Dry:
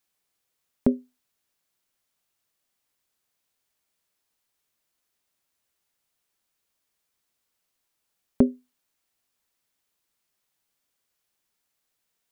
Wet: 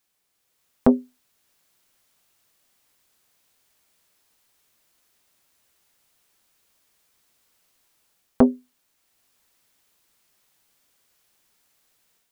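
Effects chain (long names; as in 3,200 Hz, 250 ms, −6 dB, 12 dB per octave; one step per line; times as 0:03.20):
automatic gain control gain up to 7.5 dB
saturating transformer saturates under 450 Hz
level +4 dB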